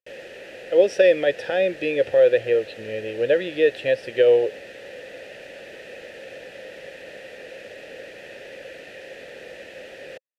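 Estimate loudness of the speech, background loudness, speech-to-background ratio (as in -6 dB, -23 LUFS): -20.5 LUFS, -39.5 LUFS, 19.0 dB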